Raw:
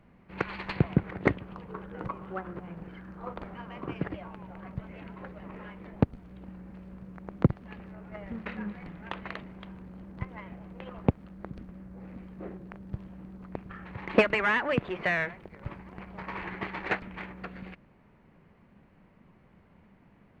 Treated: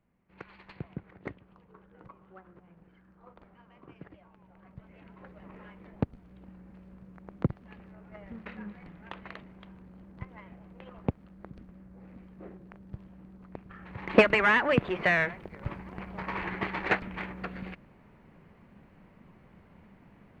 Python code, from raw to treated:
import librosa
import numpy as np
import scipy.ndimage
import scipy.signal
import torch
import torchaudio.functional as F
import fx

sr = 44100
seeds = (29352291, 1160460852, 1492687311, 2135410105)

y = fx.gain(x, sr, db=fx.line((4.29, -15.5), (5.43, -5.5), (13.68, -5.5), (14.23, 3.0)))